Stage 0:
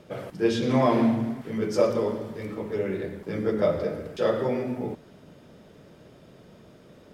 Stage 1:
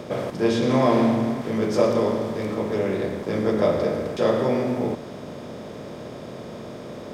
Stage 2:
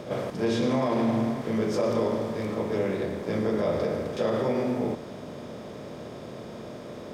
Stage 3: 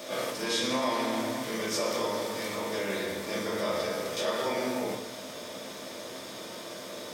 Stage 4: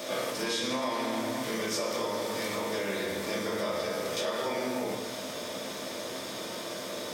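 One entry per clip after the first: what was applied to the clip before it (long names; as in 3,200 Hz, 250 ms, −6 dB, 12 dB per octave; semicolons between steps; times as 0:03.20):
compressor on every frequency bin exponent 0.6
brickwall limiter −13.5 dBFS, peak gain reduction 7.5 dB; backwards echo 36 ms −11.5 dB; level −3.5 dB
spectral tilt +4.5 dB per octave; in parallel at −2 dB: brickwall limiter −25 dBFS, peak gain reduction 9 dB; on the sum: rectangular room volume 250 cubic metres, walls furnished, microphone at 2.5 metres; level −8.5 dB
downward compressor 3 to 1, threshold −33 dBFS, peak gain reduction 7 dB; level +3.5 dB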